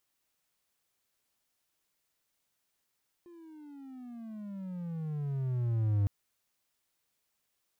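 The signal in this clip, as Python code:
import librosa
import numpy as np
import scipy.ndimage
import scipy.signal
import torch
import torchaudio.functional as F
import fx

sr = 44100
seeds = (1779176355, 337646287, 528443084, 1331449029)

y = fx.riser_tone(sr, length_s=2.81, level_db=-22, wave='triangle', hz=352.0, rise_st=-22.0, swell_db=26)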